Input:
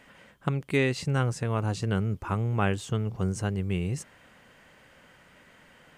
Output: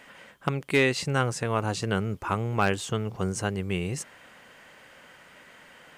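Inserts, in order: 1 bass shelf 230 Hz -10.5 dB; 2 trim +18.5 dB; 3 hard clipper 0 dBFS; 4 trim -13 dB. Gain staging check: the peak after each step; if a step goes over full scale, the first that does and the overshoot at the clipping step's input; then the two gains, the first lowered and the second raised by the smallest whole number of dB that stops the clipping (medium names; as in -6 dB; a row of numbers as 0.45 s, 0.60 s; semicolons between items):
-12.0 dBFS, +6.5 dBFS, 0.0 dBFS, -13.0 dBFS; step 2, 6.5 dB; step 2 +11.5 dB, step 4 -6 dB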